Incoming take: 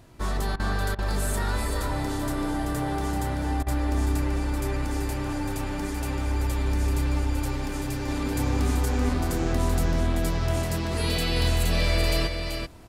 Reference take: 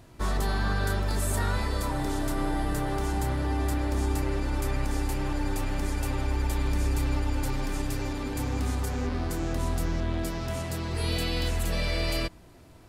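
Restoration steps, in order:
repair the gap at 0:00.56/0:00.95/0:03.63, 35 ms
echo removal 384 ms −6 dB
level correction −3.5 dB, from 0:08.08

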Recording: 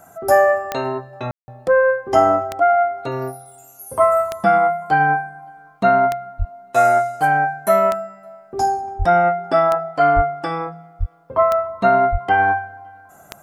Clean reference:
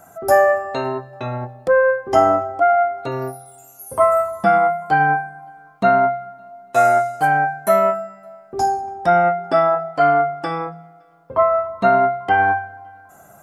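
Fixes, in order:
click removal
high-pass at the plosives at 0:01.38/0:06.38/0:08.98/0:10.15/0:10.99/0:12.11
ambience match 0:01.31–0:01.48

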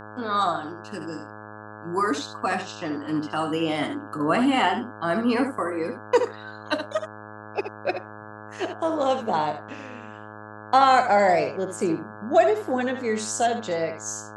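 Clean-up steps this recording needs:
hum removal 106.2 Hz, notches 16
echo removal 73 ms −9 dB

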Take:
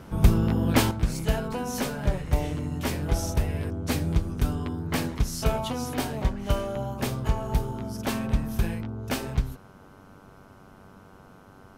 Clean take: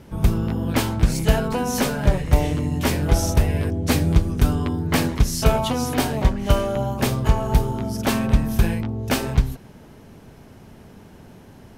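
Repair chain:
hum removal 96 Hz, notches 16
level correction +7.5 dB, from 0:00.91

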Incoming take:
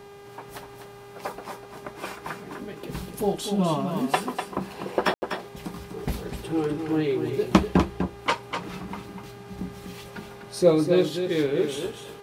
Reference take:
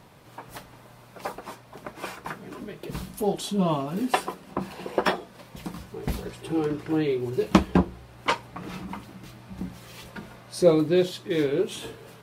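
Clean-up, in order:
hum removal 403.3 Hz, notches 35
ambience match 0:05.14–0:05.22
echo removal 248 ms −7.5 dB

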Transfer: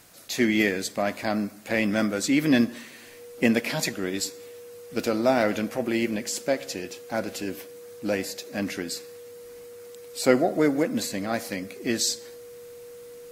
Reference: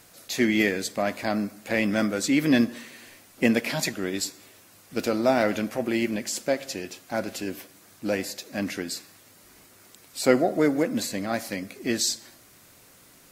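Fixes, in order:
notch filter 480 Hz, Q 30

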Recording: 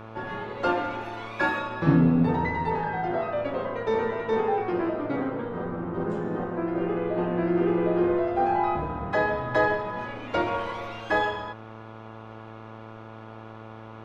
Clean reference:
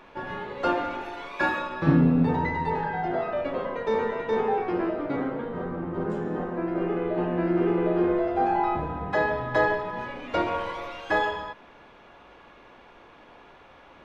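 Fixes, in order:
hum removal 110.8 Hz, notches 13

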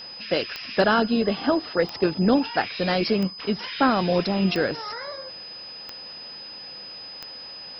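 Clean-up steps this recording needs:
click removal
notch filter 5,000 Hz, Q 30

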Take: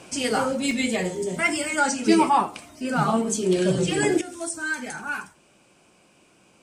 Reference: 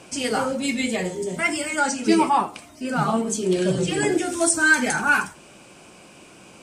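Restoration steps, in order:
repair the gap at 0:00.71, 1.2 ms
level correction +11 dB, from 0:04.21

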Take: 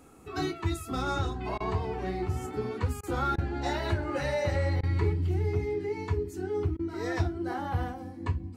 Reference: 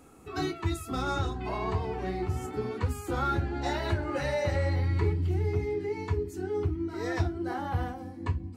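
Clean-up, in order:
repair the gap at 0:01.58/0:03.01/0:03.36/0:04.81/0:06.77, 21 ms

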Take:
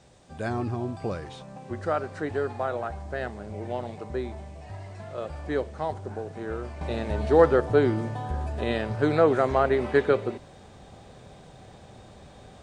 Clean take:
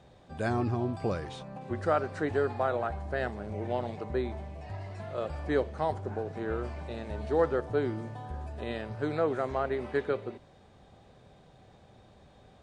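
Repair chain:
downward expander −41 dBFS, range −21 dB
level 0 dB, from 0:06.81 −8.5 dB

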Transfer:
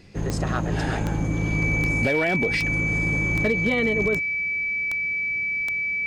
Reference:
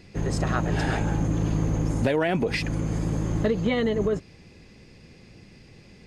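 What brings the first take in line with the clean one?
clipped peaks rebuilt −14.5 dBFS
click removal
notch filter 2,300 Hz, Q 30

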